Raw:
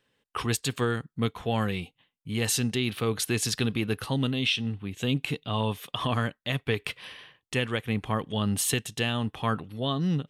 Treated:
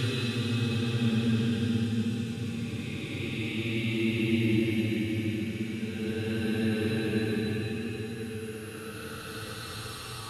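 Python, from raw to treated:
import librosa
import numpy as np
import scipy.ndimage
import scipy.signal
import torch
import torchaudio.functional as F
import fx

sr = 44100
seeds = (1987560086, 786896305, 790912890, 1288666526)

y = fx.rev_double_slope(x, sr, seeds[0], early_s=0.39, late_s=3.0, knee_db=-22, drr_db=3.0)
y = fx.paulstretch(y, sr, seeds[1], factor=24.0, window_s=0.1, from_s=3.63)
y = y * librosa.db_to_amplitude(-5.0)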